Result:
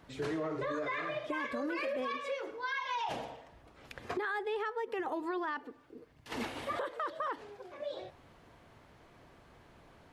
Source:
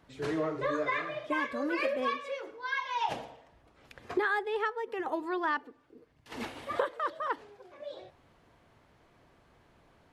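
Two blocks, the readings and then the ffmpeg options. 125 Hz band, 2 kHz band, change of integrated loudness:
-1.5 dB, -4.5 dB, -4.0 dB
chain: -af "alimiter=level_in=3dB:limit=-24dB:level=0:latency=1:release=19,volume=-3dB,acompressor=threshold=-39dB:ratio=2.5,volume=4dB"

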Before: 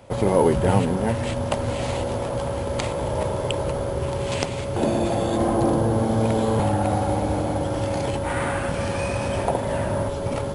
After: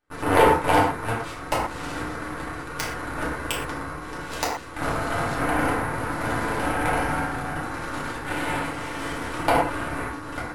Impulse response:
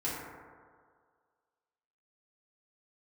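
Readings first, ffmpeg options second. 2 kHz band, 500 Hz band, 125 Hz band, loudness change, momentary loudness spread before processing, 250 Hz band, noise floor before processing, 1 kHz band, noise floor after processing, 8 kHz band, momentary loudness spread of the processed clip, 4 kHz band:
+6.5 dB, -5.0 dB, -8.5 dB, -2.5 dB, 6 LU, -5.0 dB, -28 dBFS, +2.5 dB, -36 dBFS, -1.0 dB, 11 LU, 0.0 dB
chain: -filter_complex "[0:a]highpass=f=700:t=q:w=1.5,aeval=exprs='0.668*(cos(1*acos(clip(val(0)/0.668,-1,1)))-cos(1*PI/2))+0.266*(cos(2*acos(clip(val(0)/0.668,-1,1)))-cos(2*PI/2))+0.0944*(cos(7*acos(clip(val(0)/0.668,-1,1)))-cos(7*PI/2))+0.0944*(cos(8*acos(clip(val(0)/0.668,-1,1)))-cos(8*PI/2))':c=same[a];[1:a]atrim=start_sample=2205,atrim=end_sample=6174[b];[a][b]afir=irnorm=-1:irlink=0"

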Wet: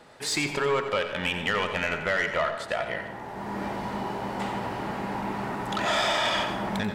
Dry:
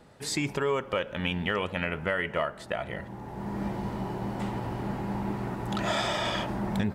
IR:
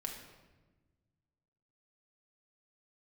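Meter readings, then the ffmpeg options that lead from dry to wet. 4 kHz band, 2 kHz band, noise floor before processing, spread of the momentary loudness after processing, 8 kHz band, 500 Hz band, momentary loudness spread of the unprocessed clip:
+5.0 dB, +5.0 dB, -45 dBFS, 8 LU, +4.0 dB, +2.5 dB, 6 LU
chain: -filter_complex "[0:a]asplit=2[a][b];[b]highpass=f=720:p=1,volume=14dB,asoftclip=type=tanh:threshold=-14.5dB[c];[a][c]amix=inputs=2:normalize=0,lowpass=f=6.7k:p=1,volume=-6dB,asplit=2[d][e];[1:a]atrim=start_sample=2205,adelay=88[f];[e][f]afir=irnorm=-1:irlink=0,volume=-7dB[g];[d][g]amix=inputs=2:normalize=0,volume=-1.5dB"

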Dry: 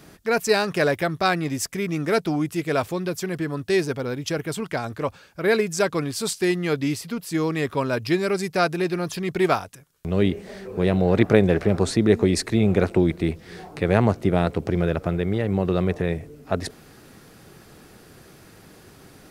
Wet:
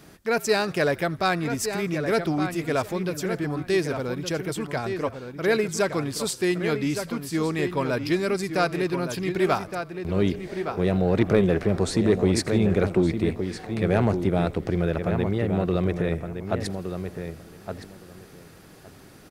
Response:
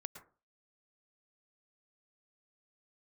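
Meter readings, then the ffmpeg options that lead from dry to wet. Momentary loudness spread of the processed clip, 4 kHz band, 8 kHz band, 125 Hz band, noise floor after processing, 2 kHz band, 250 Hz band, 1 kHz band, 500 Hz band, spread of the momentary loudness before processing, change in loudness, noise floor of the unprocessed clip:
9 LU, -2.0 dB, -1.5 dB, -1.5 dB, -48 dBFS, -2.0 dB, -1.5 dB, -1.5 dB, -1.5 dB, 9 LU, -2.0 dB, -50 dBFS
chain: -filter_complex "[0:a]asplit=2[a][b];[b]adelay=1166,lowpass=f=3.2k:p=1,volume=-8dB,asplit=2[c][d];[d]adelay=1166,lowpass=f=3.2k:p=1,volume=0.16,asplit=2[e][f];[f]adelay=1166,lowpass=f=3.2k:p=1,volume=0.16[g];[c][e][g]amix=inputs=3:normalize=0[h];[a][h]amix=inputs=2:normalize=0,acontrast=46,asplit=2[i][j];[j]asplit=4[k][l][m][n];[k]adelay=83,afreqshift=-59,volume=-24dB[o];[l]adelay=166,afreqshift=-118,volume=-28.6dB[p];[m]adelay=249,afreqshift=-177,volume=-33.2dB[q];[n]adelay=332,afreqshift=-236,volume=-37.7dB[r];[o][p][q][r]amix=inputs=4:normalize=0[s];[i][s]amix=inputs=2:normalize=0,volume=-7.5dB"

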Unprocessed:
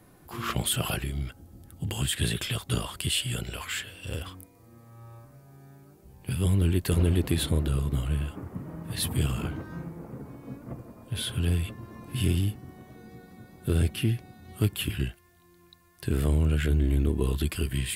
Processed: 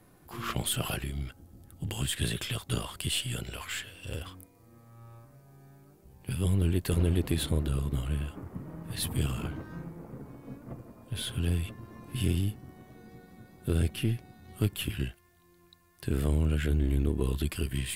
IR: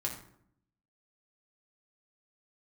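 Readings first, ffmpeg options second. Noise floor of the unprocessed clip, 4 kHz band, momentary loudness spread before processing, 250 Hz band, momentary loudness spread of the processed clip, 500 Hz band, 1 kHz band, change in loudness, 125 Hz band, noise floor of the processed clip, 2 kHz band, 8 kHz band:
-57 dBFS, -3.5 dB, 18 LU, -2.5 dB, 18 LU, -2.5 dB, -3.0 dB, -3.0 dB, -3.0 dB, -61 dBFS, -3.0 dB, -3.5 dB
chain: -af "aeval=exprs='if(lt(val(0),0),0.708*val(0),val(0))':c=same,volume=-2dB"

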